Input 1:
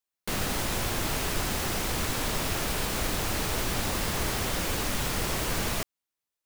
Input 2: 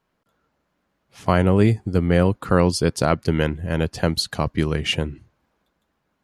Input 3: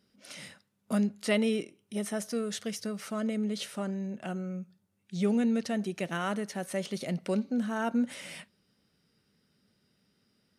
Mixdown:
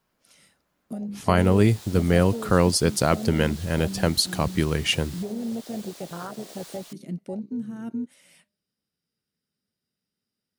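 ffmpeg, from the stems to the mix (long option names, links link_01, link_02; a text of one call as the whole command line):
ffmpeg -i stem1.wav -i stem2.wav -i stem3.wav -filter_complex "[0:a]acrossover=split=350 7200:gain=0.0891 1 0.141[link_01][link_02][link_03];[link_01][link_02][link_03]amix=inputs=3:normalize=0,aexciter=amount=2.6:drive=3.6:freq=3400,adelay=1100,volume=-2dB[link_04];[1:a]volume=-2dB[link_05];[2:a]bandreject=frequency=202:width_type=h:width=4,bandreject=frequency=404:width_type=h:width=4,bandreject=frequency=606:width_type=h:width=4,volume=1.5dB[link_06];[link_04][link_06]amix=inputs=2:normalize=0,afwtdn=0.0631,alimiter=limit=-23.5dB:level=0:latency=1:release=324,volume=0dB[link_07];[link_05][link_07]amix=inputs=2:normalize=0,highshelf=frequency=6900:gain=11" out.wav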